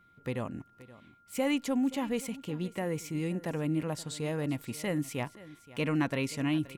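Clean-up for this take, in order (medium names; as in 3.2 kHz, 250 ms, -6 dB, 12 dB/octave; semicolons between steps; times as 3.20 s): band-stop 1.4 kHz, Q 30; inverse comb 525 ms -18.5 dB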